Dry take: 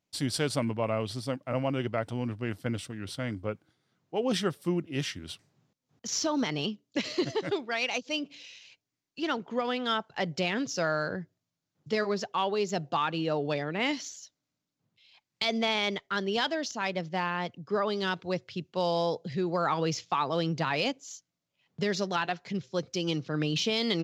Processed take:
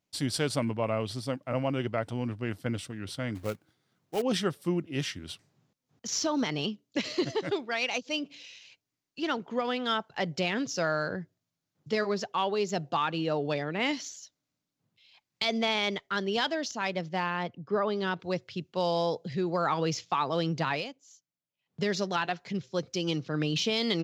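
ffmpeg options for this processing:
-filter_complex "[0:a]asettb=1/sr,asplit=3[s0][s1][s2];[s0]atrim=end=3.354[s3];[s1]atrim=start=3.35:end=4.22,asetpts=PTS-STARTPTS,afade=t=in:d=0.004:c=qsin,afade=t=out:st=0.866:d=0.004:c=qsin,acrusher=bits=3:mode=log:mix=0:aa=0.000001[s4];[s2]atrim=start=4.216[s5];[s3][s4]acrossfade=d=0.004:c1=hsin:c2=qsin[s6];[s6][s5]acrossfade=d=0.004:c1=qsin:c2=hsin,asettb=1/sr,asplit=3[s7][s8][s9];[s7]atrim=end=17.434[s10];[s8]atrim=start=17.43:end=18.2,asetpts=PTS-STARTPTS,afade=t=in:d=0.004:c=qsin,afade=t=out:st=0.766:d=0.004:c=qsin,aemphasis=mode=reproduction:type=75fm[s11];[s9]atrim=start=18.196[s12];[s10][s11]acrossfade=d=0.004:c1=hsin:c2=qsin[s13];[s13][s12]acrossfade=d=0.004:c1=qsin:c2=hsin,asplit=3[s14][s15][s16];[s14]atrim=end=20.87,asetpts=PTS-STARTPTS,afade=t=out:st=20.72:d=0.15:silence=0.251189[s17];[s15]atrim=start=20.87:end=21.66,asetpts=PTS-STARTPTS,volume=0.251[s18];[s16]atrim=start=21.66,asetpts=PTS-STARTPTS,afade=t=in:d=0.15:silence=0.251189[s19];[s17][s18][s19]concat=n=3:v=0:a=1"

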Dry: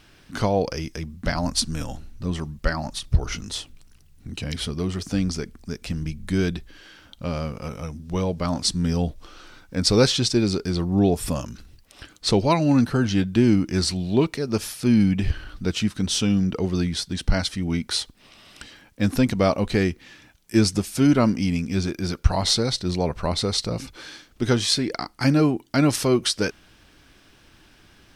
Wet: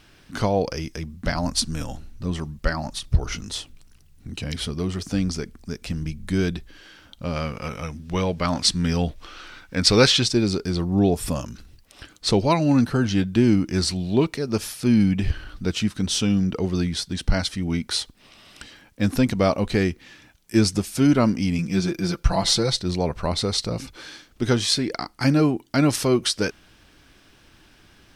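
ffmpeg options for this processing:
-filter_complex "[0:a]asettb=1/sr,asplit=3[s0][s1][s2];[s0]atrim=end=7.364[s3];[s1]atrim=start=7.36:end=10.24,asetpts=PTS-STARTPTS,afade=t=in:d=0.004:c=qsin,afade=t=out:st=2.876:d=0.004:c=qsin,equalizer=f=2200:t=o:w=2.1:g=8[s4];[s2]atrim=start=10.236[s5];[s3][s4]acrossfade=d=0.004:c1=hsin:c2=qsin[s6];[s6][s5]acrossfade=d=0.004:c1=qsin:c2=hsin,asettb=1/sr,asplit=3[s7][s8][s9];[s7]atrim=end=21.584[s10];[s8]atrim=start=21.58:end=22.79,asetpts=PTS-STARTPTS,afade=t=in:d=0.004:c=qsin,afade=t=out:st=1.206:d=0.004:c=qsin,aecho=1:1:5.9:0.65,atrim=end_sample=53361[s11];[s9]atrim=start=22.786[s12];[s10][s11]acrossfade=d=0.004:c1=hsin:c2=qsin[s13];[s13][s12]acrossfade=d=0.004:c1=qsin:c2=hsin"

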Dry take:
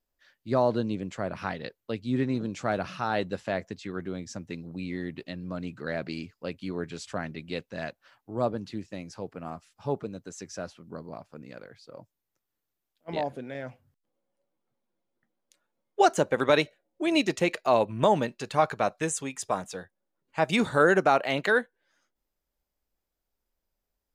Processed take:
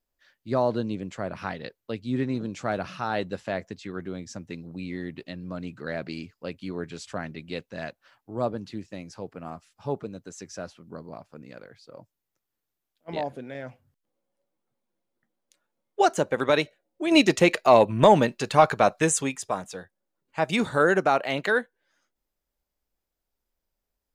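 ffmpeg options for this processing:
-filter_complex "[0:a]asplit=3[s0][s1][s2];[s0]afade=t=out:st=17.1:d=0.02[s3];[s1]acontrast=76,afade=t=in:st=17.1:d=0.02,afade=t=out:st=19.35:d=0.02[s4];[s2]afade=t=in:st=19.35:d=0.02[s5];[s3][s4][s5]amix=inputs=3:normalize=0"

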